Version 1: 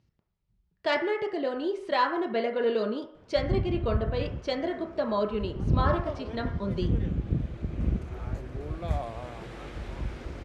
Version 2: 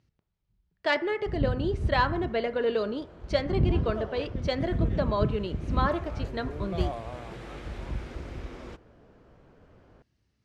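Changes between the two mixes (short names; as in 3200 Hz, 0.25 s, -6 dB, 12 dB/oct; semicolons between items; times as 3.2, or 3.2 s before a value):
speech: send -6.5 dB; background: entry -2.10 s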